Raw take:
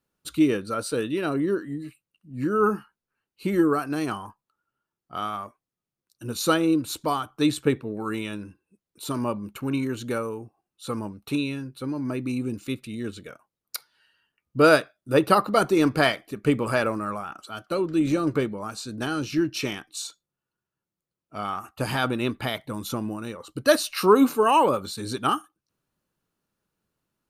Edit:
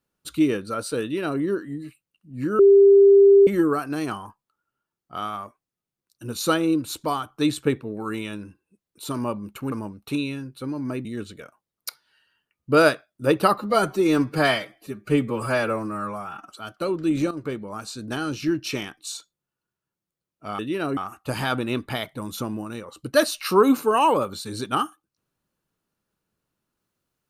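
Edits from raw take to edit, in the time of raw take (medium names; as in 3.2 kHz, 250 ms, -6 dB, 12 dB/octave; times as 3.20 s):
1.02–1.40 s: copy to 21.49 s
2.59–3.47 s: bleep 397 Hz -9 dBFS
9.72–10.92 s: delete
12.25–12.92 s: delete
15.45–17.39 s: stretch 1.5×
18.21–18.69 s: fade in, from -12 dB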